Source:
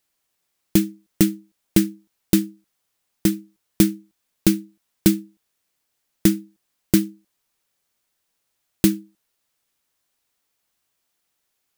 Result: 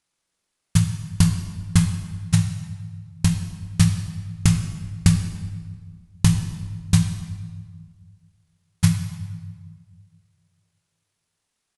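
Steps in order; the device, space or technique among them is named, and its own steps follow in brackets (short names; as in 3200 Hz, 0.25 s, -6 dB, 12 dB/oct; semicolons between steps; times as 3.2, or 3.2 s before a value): monster voice (pitch shift -11.5 st; low shelf 210 Hz +4 dB; reverb RT60 1.7 s, pre-delay 20 ms, DRR 6 dB); gain -3 dB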